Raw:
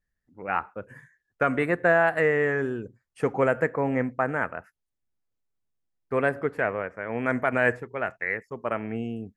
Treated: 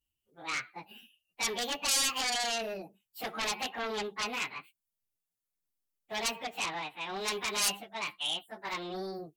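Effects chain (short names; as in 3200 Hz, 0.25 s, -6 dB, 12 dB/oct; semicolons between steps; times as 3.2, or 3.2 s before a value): pitch shift by moving bins +8.5 st; sine folder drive 14 dB, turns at -10 dBFS; pre-emphasis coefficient 0.8; gain -9 dB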